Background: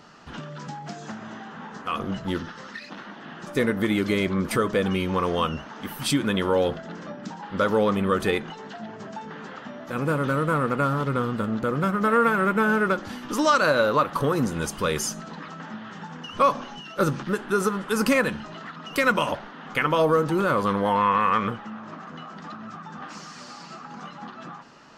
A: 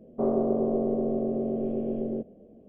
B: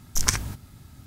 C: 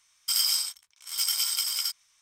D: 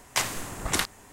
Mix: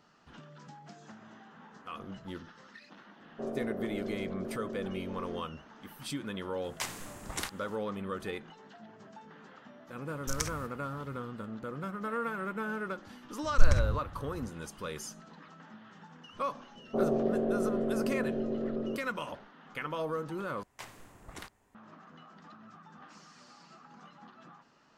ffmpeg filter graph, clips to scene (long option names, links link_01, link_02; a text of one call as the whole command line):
ffmpeg -i bed.wav -i cue0.wav -i cue1.wav -i cue2.wav -i cue3.wav -filter_complex "[1:a]asplit=2[link_01][link_02];[4:a]asplit=2[link_03][link_04];[2:a]asplit=2[link_05][link_06];[0:a]volume=-14.5dB[link_07];[link_06]aemphasis=mode=reproduction:type=riaa[link_08];[link_04]equalizer=frequency=9000:width=0.34:gain=-8[link_09];[link_07]asplit=2[link_10][link_11];[link_10]atrim=end=20.634[link_12];[link_09]atrim=end=1.12,asetpts=PTS-STARTPTS,volume=-17dB[link_13];[link_11]atrim=start=21.746[link_14];[link_01]atrim=end=2.68,asetpts=PTS-STARTPTS,volume=-12dB,afade=type=in:duration=0.004:curve=hsin,afade=type=out:start_time=2.676:duration=0.004:curve=hsin,adelay=3200[link_15];[link_03]atrim=end=1.12,asetpts=PTS-STARTPTS,volume=-10.5dB,afade=type=in:duration=0.004:curve=hsin,afade=type=out:start_time=1.116:duration=0.004:curve=hsin,adelay=6640[link_16];[link_05]atrim=end=1.06,asetpts=PTS-STARTPTS,volume=-12dB,afade=type=in:duration=0.004:curve=hsin,afade=type=out:start_time=1.056:duration=0.004:curve=hsin,adelay=10120[link_17];[link_08]atrim=end=1.06,asetpts=PTS-STARTPTS,volume=-11dB,afade=type=in:duration=0.004:curve=hsin,afade=type=out:start_time=1.056:duration=0.004:curve=hsin,adelay=13430[link_18];[link_02]atrim=end=2.68,asetpts=PTS-STARTPTS,volume=-4dB,afade=type=in:duration=0.004:curve=hsin,afade=type=out:start_time=2.676:duration=0.004:curve=hsin,adelay=16750[link_19];[link_12][link_13]acrossfade=duration=0.004:curve1=hsin:curve2=hsin[link_20];[link_20][link_14]acrossfade=duration=0.004:curve1=hsin:curve2=hsin[link_21];[link_21][link_15][link_16][link_17][link_18][link_19]amix=inputs=6:normalize=0" out.wav